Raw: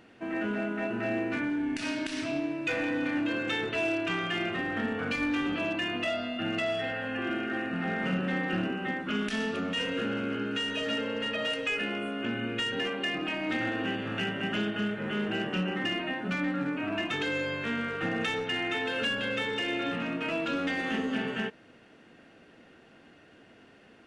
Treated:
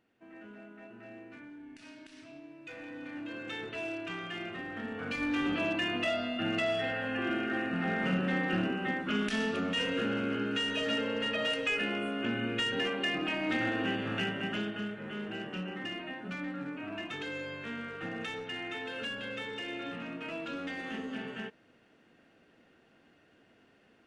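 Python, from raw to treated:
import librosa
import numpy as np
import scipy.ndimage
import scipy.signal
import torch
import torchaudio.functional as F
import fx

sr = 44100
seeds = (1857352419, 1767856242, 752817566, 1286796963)

y = fx.gain(x, sr, db=fx.line((2.41, -18.5), (3.59, -8.5), (4.82, -8.5), (5.47, -0.5), (14.13, -0.5), (15.02, -8.0)))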